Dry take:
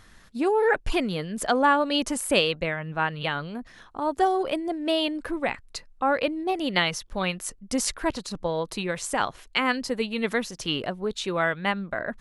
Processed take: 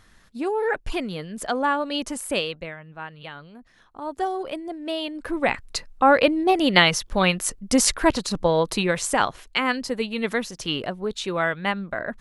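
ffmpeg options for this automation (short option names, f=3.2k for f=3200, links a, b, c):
-af "volume=15.5dB,afade=t=out:st=2.26:d=0.6:silence=0.398107,afade=t=in:st=3.59:d=0.63:silence=0.473151,afade=t=in:st=5.13:d=0.49:silence=0.266073,afade=t=out:st=8.71:d=0.88:silence=0.473151"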